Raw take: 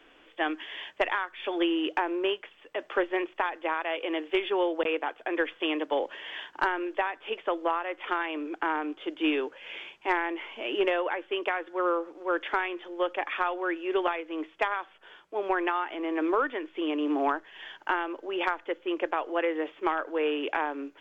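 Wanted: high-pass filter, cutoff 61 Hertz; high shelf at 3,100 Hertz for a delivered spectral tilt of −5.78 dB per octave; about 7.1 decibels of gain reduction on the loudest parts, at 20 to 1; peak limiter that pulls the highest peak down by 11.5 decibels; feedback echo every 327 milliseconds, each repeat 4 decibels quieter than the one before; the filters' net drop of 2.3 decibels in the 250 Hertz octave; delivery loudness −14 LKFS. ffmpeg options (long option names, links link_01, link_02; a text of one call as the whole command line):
ffmpeg -i in.wav -af "highpass=61,equalizer=frequency=250:width_type=o:gain=-3.5,highshelf=frequency=3100:gain=-8,acompressor=threshold=-30dB:ratio=20,alimiter=level_in=4.5dB:limit=-24dB:level=0:latency=1,volume=-4.5dB,aecho=1:1:327|654|981|1308|1635|1962|2289|2616|2943:0.631|0.398|0.25|0.158|0.0994|0.0626|0.0394|0.0249|0.0157,volume=22.5dB" out.wav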